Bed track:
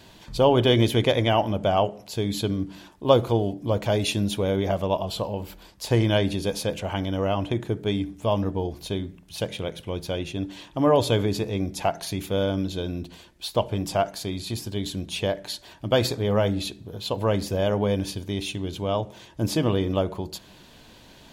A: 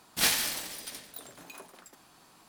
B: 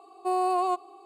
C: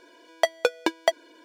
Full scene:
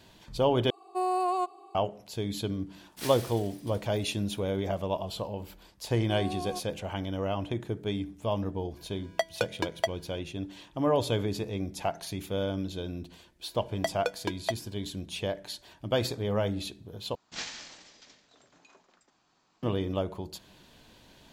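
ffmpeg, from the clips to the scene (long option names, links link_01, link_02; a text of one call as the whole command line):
ffmpeg -i bed.wav -i cue0.wav -i cue1.wav -i cue2.wav -filter_complex "[2:a]asplit=2[link_01][link_02];[1:a]asplit=2[link_03][link_04];[3:a]asplit=2[link_05][link_06];[0:a]volume=-6.5dB[link_07];[link_02]equalizer=frequency=1200:width=4.1:gain=-12[link_08];[link_04]aresample=16000,aresample=44100[link_09];[link_07]asplit=3[link_10][link_11][link_12];[link_10]atrim=end=0.704[link_13];[link_01]atrim=end=1.05,asetpts=PTS-STARTPTS,volume=-2.5dB[link_14];[link_11]atrim=start=1.746:end=17.154[link_15];[link_09]atrim=end=2.48,asetpts=PTS-STARTPTS,volume=-11dB[link_16];[link_12]atrim=start=19.626[link_17];[link_03]atrim=end=2.48,asetpts=PTS-STARTPTS,volume=-14dB,afade=type=in:duration=0.004:curve=hsin,afade=type=out:start_time=2.476:duration=0.004:curve=hsin,adelay=2800[link_18];[link_08]atrim=end=1.05,asetpts=PTS-STARTPTS,volume=-11dB,afade=type=in:duration=0.004:curve=hsin,afade=type=out:start_time=1.046:duration=0.004:curve=hsin,adelay=5840[link_19];[link_05]atrim=end=1.44,asetpts=PTS-STARTPTS,volume=-6.5dB,afade=type=in:duration=0.004:curve=hsin,afade=type=out:start_time=1.436:duration=0.004:curve=hsin,adelay=8760[link_20];[link_06]atrim=end=1.44,asetpts=PTS-STARTPTS,volume=-9dB,afade=type=in:duration=0.004:curve=hsin,afade=type=out:start_time=1.436:duration=0.004:curve=hsin,adelay=13410[link_21];[link_13][link_14]acrossfade=duration=0.004:curve1=hsin:curve2=hsin[link_22];[link_22][link_15]acrossfade=duration=0.004:curve1=hsin:curve2=hsin[link_23];[link_23][link_16]acrossfade=duration=0.004:curve1=hsin:curve2=hsin[link_24];[link_24][link_17]acrossfade=duration=0.004:curve1=hsin:curve2=hsin[link_25];[link_25][link_18][link_19][link_20][link_21]amix=inputs=5:normalize=0" out.wav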